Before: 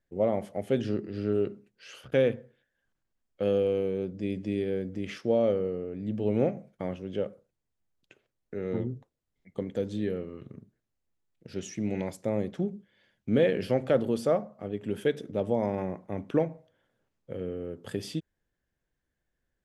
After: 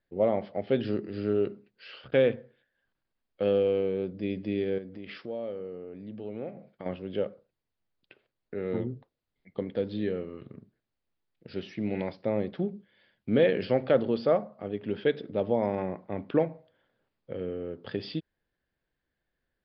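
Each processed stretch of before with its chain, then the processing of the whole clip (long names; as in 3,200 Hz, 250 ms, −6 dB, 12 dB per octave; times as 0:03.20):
0:04.78–0:06.86: downward compressor 2 to 1, threshold −42 dBFS + low-shelf EQ 68 Hz −8.5 dB
whole clip: Butterworth low-pass 5,000 Hz 96 dB per octave; low-shelf EQ 200 Hz −5.5 dB; level +2 dB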